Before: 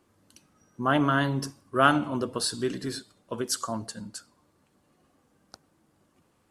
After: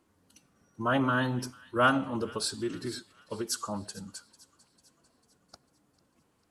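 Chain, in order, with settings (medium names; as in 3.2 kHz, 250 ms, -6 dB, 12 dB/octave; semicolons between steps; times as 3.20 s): formant-preserving pitch shift -1.5 st; feedback echo behind a high-pass 447 ms, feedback 51%, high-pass 1.9 kHz, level -18.5 dB; trim -3 dB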